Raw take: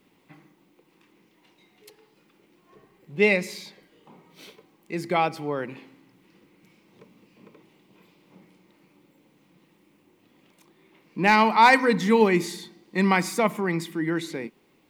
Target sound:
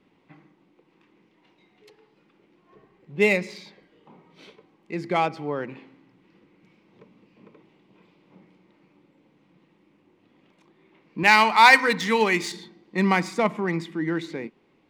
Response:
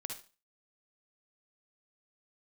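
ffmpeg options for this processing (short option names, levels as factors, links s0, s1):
-filter_complex "[0:a]asettb=1/sr,asplit=3[s0][s1][s2];[s0]atrim=end=11.234[s3];[s1]atrim=start=11.23:end=12.52,asetpts=PTS-STARTPTS,afade=t=in:d=0.004:c=qsin,afade=t=out:st=1.286:d=0.004:c=qsin,tiltshelf=f=790:g=-7[s4];[s2]atrim=start=12.516[s5];[s3][s4]acrossfade=d=0.004:c1=hsin:c2=qsin[s6];[s6][s5]acrossfade=d=0.004:c1=qsin:c2=hsin,adynamicsmooth=sensitivity=3.5:basefreq=4300"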